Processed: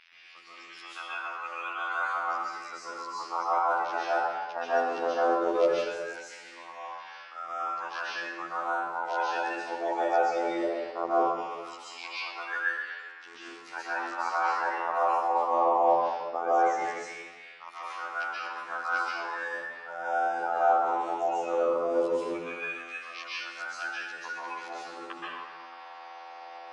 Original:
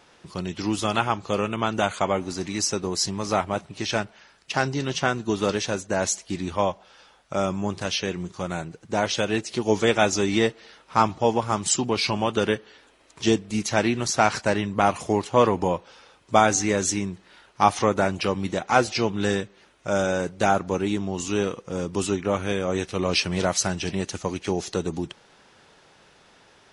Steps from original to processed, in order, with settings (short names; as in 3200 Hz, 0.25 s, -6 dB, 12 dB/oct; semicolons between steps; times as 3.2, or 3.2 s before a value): bin magnitudes rounded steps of 30 dB; resonant high shelf 4600 Hz +8 dB, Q 1.5; reverse; compressor 6:1, threshold -34 dBFS, peak gain reduction 22.5 dB; reverse; LFO high-pass saw down 0.18 Hz 500–2500 Hz; robotiser 84.9 Hz; air absorption 410 m; plate-style reverb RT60 1.4 s, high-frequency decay 0.6×, pre-delay 0.115 s, DRR -9 dB; gain +4.5 dB